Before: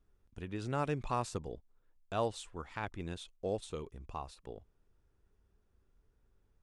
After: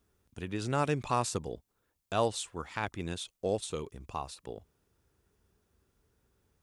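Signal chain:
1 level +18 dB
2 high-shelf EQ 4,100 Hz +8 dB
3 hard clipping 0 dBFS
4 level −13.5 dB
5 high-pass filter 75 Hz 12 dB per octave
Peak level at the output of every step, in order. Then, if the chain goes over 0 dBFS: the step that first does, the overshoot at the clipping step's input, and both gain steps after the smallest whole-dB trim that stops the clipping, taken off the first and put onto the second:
−2.5, −1.5, −1.5, −15.0, −14.5 dBFS
no step passes full scale

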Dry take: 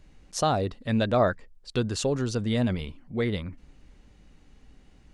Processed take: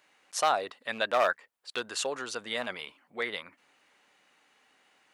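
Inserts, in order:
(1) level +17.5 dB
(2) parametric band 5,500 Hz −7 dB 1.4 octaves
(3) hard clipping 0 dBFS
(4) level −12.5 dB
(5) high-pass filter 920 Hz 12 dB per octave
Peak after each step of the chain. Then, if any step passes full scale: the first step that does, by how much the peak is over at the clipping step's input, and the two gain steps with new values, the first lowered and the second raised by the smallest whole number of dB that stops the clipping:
+6.5, +6.5, 0.0, −12.5, −12.5 dBFS
step 1, 6.5 dB
step 1 +10.5 dB, step 4 −5.5 dB

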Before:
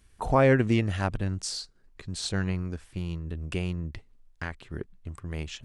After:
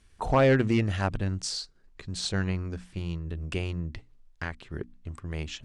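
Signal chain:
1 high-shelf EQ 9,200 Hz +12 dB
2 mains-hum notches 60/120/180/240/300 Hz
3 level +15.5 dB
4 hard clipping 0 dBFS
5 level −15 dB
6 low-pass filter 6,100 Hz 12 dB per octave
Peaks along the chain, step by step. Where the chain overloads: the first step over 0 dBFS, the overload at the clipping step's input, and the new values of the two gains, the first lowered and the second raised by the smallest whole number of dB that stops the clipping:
−9.0, −9.5, +6.0, 0.0, −15.0, −14.5 dBFS
step 3, 6.0 dB
step 3 +9.5 dB, step 5 −9 dB

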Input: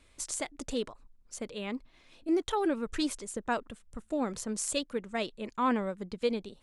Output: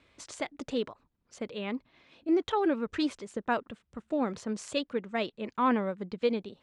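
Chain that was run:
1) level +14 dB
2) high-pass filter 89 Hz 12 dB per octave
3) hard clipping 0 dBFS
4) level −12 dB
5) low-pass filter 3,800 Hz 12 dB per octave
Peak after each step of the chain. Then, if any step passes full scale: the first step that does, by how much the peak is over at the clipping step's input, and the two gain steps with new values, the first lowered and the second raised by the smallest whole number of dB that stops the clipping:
−2.0, −2.5, −2.5, −14.5, −16.0 dBFS
no step passes full scale

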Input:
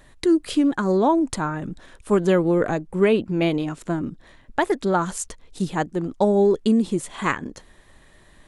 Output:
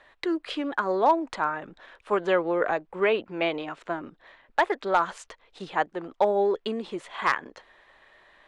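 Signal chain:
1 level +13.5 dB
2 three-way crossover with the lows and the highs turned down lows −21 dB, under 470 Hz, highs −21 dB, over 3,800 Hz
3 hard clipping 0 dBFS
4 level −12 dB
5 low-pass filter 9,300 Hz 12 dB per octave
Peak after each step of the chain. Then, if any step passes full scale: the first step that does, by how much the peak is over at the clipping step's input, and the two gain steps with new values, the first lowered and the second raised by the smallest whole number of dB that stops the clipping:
+7.0, +6.5, 0.0, −12.0, −11.5 dBFS
step 1, 6.5 dB
step 1 +6.5 dB, step 4 −5 dB

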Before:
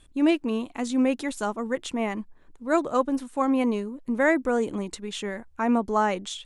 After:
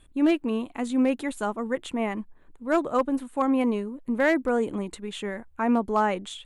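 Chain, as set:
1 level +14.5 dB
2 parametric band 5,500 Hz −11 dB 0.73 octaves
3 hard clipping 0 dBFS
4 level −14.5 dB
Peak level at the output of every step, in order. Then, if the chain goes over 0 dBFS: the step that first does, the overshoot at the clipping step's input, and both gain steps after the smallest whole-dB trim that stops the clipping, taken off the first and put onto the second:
+5.0, +4.5, 0.0, −14.5 dBFS
step 1, 4.5 dB
step 1 +9.5 dB, step 4 −9.5 dB

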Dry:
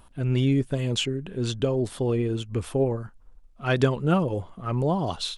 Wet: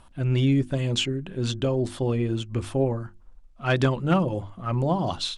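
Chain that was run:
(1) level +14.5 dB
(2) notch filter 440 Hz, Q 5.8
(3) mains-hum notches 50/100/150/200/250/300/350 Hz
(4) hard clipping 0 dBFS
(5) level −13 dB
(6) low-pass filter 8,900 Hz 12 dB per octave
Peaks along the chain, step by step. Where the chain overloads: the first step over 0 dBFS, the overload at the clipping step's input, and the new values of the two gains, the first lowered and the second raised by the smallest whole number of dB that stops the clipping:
+6.0, +4.5, +4.0, 0.0, −13.0, −12.5 dBFS
step 1, 4.0 dB
step 1 +10.5 dB, step 5 −9 dB

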